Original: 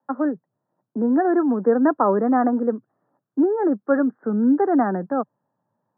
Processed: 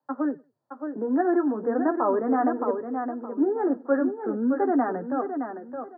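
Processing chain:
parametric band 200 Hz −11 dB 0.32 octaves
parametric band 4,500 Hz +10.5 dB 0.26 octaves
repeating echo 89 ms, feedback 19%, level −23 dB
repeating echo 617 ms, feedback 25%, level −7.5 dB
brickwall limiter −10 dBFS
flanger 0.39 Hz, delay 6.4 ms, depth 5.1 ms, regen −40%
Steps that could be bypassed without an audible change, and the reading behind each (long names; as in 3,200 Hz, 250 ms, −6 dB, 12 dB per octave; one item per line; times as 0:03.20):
parametric band 4,500 Hz: nothing at its input above 1,800 Hz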